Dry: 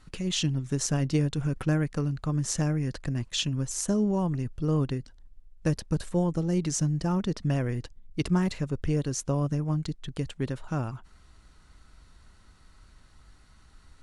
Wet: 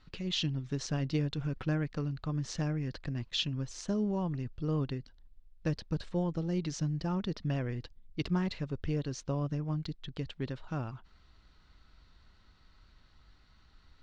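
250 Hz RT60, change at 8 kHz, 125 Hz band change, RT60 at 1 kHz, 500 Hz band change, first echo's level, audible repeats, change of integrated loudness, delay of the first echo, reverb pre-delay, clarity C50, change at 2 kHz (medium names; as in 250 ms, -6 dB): no reverb, -13.5 dB, -6.0 dB, no reverb, -6.0 dB, no echo, no echo, -6.0 dB, no echo, no reverb, no reverb, -4.5 dB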